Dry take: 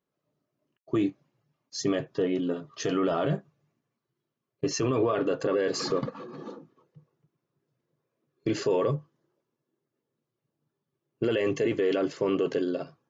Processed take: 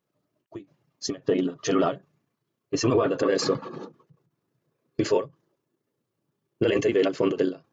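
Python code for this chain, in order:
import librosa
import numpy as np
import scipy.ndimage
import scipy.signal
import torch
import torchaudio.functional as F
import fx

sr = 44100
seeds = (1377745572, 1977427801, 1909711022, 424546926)

y = fx.stretch_grains(x, sr, factor=0.59, grain_ms=68.0)
y = fx.end_taper(y, sr, db_per_s=250.0)
y = y * 10.0 ** (5.5 / 20.0)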